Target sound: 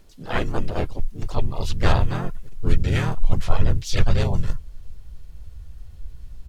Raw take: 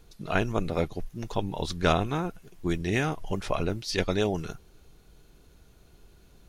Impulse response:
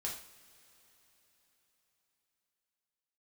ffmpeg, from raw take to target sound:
-filter_complex "[0:a]asplit=3[a][b][c];[b]asetrate=33038,aresample=44100,atempo=1.33484,volume=-3dB[d];[c]asetrate=55563,aresample=44100,atempo=0.793701,volume=-2dB[e];[a][d][e]amix=inputs=3:normalize=0,asubboost=boost=11:cutoff=91,volume=-2dB"

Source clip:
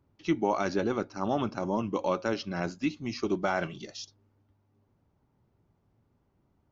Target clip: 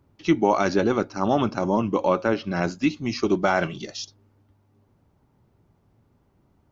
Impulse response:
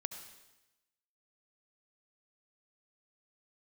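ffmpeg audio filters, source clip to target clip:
-filter_complex "[0:a]asettb=1/sr,asplit=3[a][b][c];[a]atrim=end=1.764[d];[b]atrim=start=1.76:end=2.52,asetpts=PTS-STARTPTS,afade=t=in:d=0.004:c=qsin,afade=t=out:st=0.756:d=0.004:c=qsin,acrossover=split=2900[e][f];[f]acompressor=threshold=-55dB:ratio=4:attack=1:release=60[g];[e][g]amix=inputs=2:normalize=0[h];[c]atrim=start=2.516[i];[d][h]acrossfade=d=0.004:c1=hsin:c2=qsin[j];[j][i]acrossfade=d=0.004:c1=qsin:c2=hsin,volume=7.5dB"

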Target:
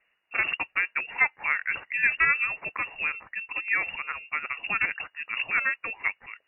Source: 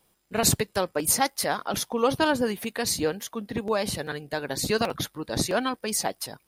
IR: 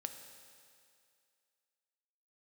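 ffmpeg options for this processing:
-af "equalizer=f=100:t=o:w=0.67:g=-11,equalizer=f=400:t=o:w=0.67:g=-7,equalizer=f=1k:t=o:w=0.67:g=5,lowpass=f=2.5k:t=q:w=0.5098,lowpass=f=2.5k:t=q:w=0.6013,lowpass=f=2.5k:t=q:w=0.9,lowpass=f=2.5k:t=q:w=2.563,afreqshift=-2900"

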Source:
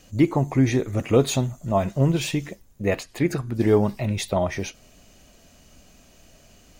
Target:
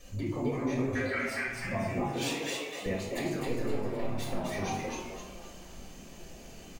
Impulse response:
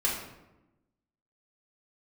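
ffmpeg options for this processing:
-filter_complex "[0:a]asettb=1/sr,asplit=3[a][b][c];[a]atrim=end=2.014[d];[b]atrim=start=2.01:end=2.86,asetpts=PTS-STARTPTS,afade=t=in:d=0.004:c=qsin,afade=t=out:st=0.846:d=0.004:c=qsin,highpass=560[e];[c]atrim=start=2.856[f];[d][e]acrossfade=d=0.004:c1=hsin:c2=qsin[g];[g][f]acrossfade=d=0.004:c1=qsin:c2=hsin,acompressor=threshold=-32dB:ratio=6,asettb=1/sr,asplit=3[h][i][j];[h]atrim=end=0.954[k];[i]atrim=start=0.95:end=1.48,asetpts=PTS-STARTPTS,afade=t=in:d=0.004:c=qsin,afade=t=out:st=0.526:d=0.004:c=qsin,aeval=exprs='val(0)*sin(2*PI*1800*n/s)':c=same[l];[j]atrim=start=1.476[m];[k][l]acrossfade=d=0.004:c1=hsin:c2=qsin[n];[n][m]acrossfade=d=0.004:c1=qsin:c2=hsin,asettb=1/sr,asplit=3[o][p][q];[o]atrim=end=3.464[r];[p]atrim=start=3.46:end=4.38,asetpts=PTS-STARTPTS,afade=t=in:d=0.004:c=qsin,afade=t=out:st=0.916:d=0.004:c=qsin,aeval=exprs='max(val(0),0)':c=same[s];[q]atrim=start=4.376[t];[r][s]acrossfade=d=0.004:c1=hsin:c2=qsin[u];[u][t]acrossfade=d=0.004:c1=qsin:c2=hsin,asplit=6[v][w][x][y][z][aa];[w]adelay=258,afreqshift=140,volume=-3dB[ab];[x]adelay=516,afreqshift=280,volume=-11dB[ac];[y]adelay=774,afreqshift=420,volume=-18.9dB[ad];[z]adelay=1032,afreqshift=560,volume=-26.9dB[ae];[aa]adelay=1290,afreqshift=700,volume=-34.8dB[af];[v][ab][ac][ad][ae][af]amix=inputs=6:normalize=0[ag];[1:a]atrim=start_sample=2205[ah];[ag][ah]afir=irnorm=-1:irlink=0,volume=-7dB"

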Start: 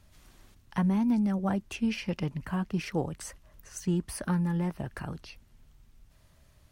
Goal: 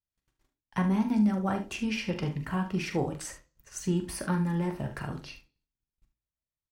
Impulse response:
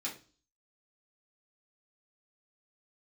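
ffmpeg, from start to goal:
-filter_complex "[0:a]agate=range=-39dB:threshold=-50dB:ratio=16:detection=peak,aecho=1:1:42|73:0.335|0.237,asplit=2[a][b];[1:a]atrim=start_sample=2205,lowpass=8.8k[c];[b][c]afir=irnorm=-1:irlink=0,volume=-6.5dB[d];[a][d]amix=inputs=2:normalize=0"

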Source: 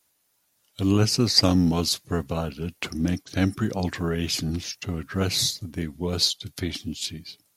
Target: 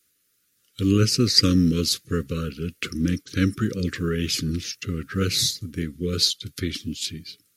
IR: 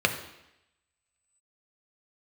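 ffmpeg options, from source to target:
-af "asuperstop=centerf=790:order=12:qfactor=1.2,volume=1.5dB"

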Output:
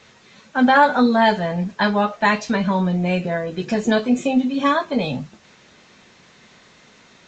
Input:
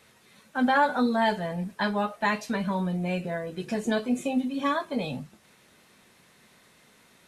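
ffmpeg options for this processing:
-af "volume=8.5dB" -ar 16000 -c:a libvorbis -b:a 64k

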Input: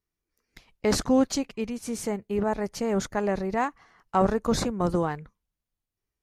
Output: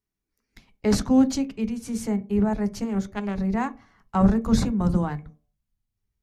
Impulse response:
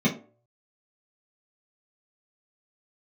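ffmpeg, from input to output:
-filter_complex "[0:a]asubboost=boost=3.5:cutoff=160,asettb=1/sr,asplit=3[a][b][c];[a]atrim=end=2.844[d];[b]atrim=start=2.84:end=3.38,asetpts=PTS-STARTPTS,afade=t=in:d=0.004:c=qsin,afade=t=out:st=0.536:d=0.004:c=qsin,aeval=exprs='0.211*(cos(1*acos(clip(val(0)/0.211,-1,1)))-cos(1*PI/2))+0.0473*(cos(3*acos(clip(val(0)/0.211,-1,1)))-cos(3*PI/2))':c=same[e];[c]atrim=start=3.376[f];[d][e]acrossfade=d=0.004:c1=hsin:c2=qsin[g];[g][f]acrossfade=d=0.004:c1=qsin:c2=hsin,asplit=2[h][i];[1:a]atrim=start_sample=2205[j];[i][j]afir=irnorm=-1:irlink=0,volume=-22dB[k];[h][k]amix=inputs=2:normalize=0,volume=-1.5dB"

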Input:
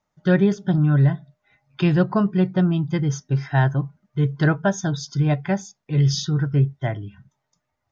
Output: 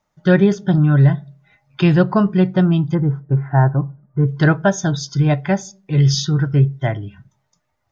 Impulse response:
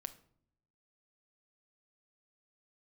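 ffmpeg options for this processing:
-filter_complex "[0:a]asplit=3[a][b][c];[a]afade=t=out:st=2.93:d=0.02[d];[b]lowpass=f=1.4k:w=0.5412,lowpass=f=1.4k:w=1.3066,afade=t=in:st=2.93:d=0.02,afade=t=out:st=4.27:d=0.02[e];[c]afade=t=in:st=4.27:d=0.02[f];[d][e][f]amix=inputs=3:normalize=0,asplit=2[g][h];[h]equalizer=f=260:w=6.1:g=-14[i];[1:a]atrim=start_sample=2205,asetrate=74970,aresample=44100[j];[i][j]afir=irnorm=-1:irlink=0,volume=-0.5dB[k];[g][k]amix=inputs=2:normalize=0,volume=2.5dB"

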